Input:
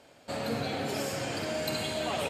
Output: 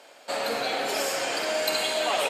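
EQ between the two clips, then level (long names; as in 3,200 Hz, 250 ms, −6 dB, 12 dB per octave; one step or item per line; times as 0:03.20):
high-pass filter 520 Hz 12 dB per octave
+8.0 dB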